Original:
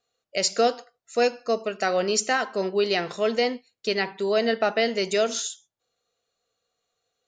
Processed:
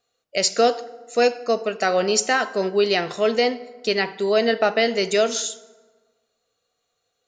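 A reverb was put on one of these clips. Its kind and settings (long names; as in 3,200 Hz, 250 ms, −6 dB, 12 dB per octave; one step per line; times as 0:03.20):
feedback delay network reverb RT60 1.4 s, low-frequency decay 1×, high-frequency decay 0.6×, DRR 15.5 dB
level +3.5 dB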